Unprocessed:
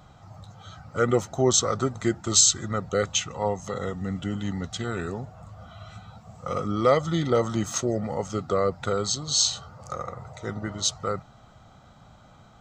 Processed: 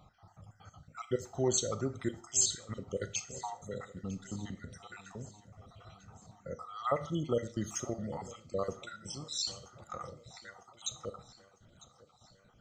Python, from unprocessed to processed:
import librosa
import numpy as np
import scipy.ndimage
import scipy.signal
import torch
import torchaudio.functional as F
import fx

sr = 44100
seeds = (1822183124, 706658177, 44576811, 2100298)

y = fx.spec_dropout(x, sr, seeds[0], share_pct=59)
y = fx.echo_feedback(y, sr, ms=951, feedback_pct=54, wet_db=-20.0)
y = fx.rev_schroeder(y, sr, rt60_s=0.4, comb_ms=26, drr_db=12.0)
y = y * librosa.db_to_amplitude(-8.5)